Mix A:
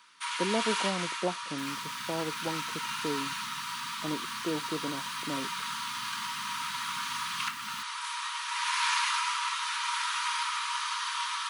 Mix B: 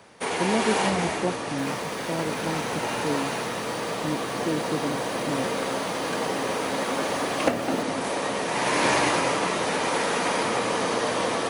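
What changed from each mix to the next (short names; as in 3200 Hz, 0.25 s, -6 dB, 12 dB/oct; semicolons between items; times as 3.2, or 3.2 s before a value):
first sound: remove rippled Chebyshev high-pass 930 Hz, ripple 6 dB; master: add low shelf 300 Hz +11 dB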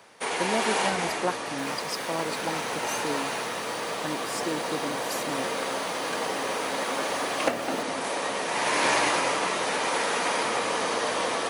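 speech: remove running mean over 30 samples; master: add low shelf 300 Hz -11 dB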